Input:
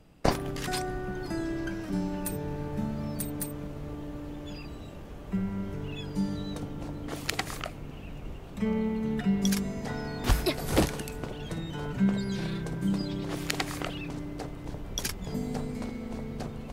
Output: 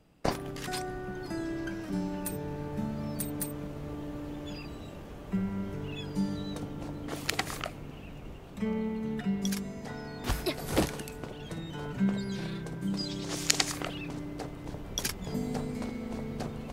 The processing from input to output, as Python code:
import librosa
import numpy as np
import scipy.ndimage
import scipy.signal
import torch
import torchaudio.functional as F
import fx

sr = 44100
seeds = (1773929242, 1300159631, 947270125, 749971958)

y = fx.low_shelf(x, sr, hz=73.0, db=-6.0)
y = fx.rider(y, sr, range_db=4, speed_s=2.0)
y = fx.peak_eq(y, sr, hz=6400.0, db=14.0, octaves=1.5, at=(12.97, 13.72))
y = F.gain(torch.from_numpy(y), -2.5).numpy()